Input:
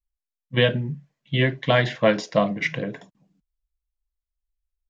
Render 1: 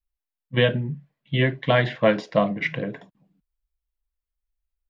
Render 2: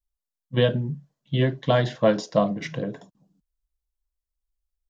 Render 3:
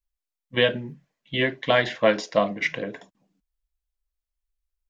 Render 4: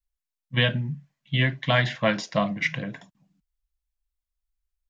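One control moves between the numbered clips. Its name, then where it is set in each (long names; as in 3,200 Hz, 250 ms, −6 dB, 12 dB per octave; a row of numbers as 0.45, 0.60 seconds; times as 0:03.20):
parametric band, centre frequency: 6,400, 2,200, 140, 420 Hertz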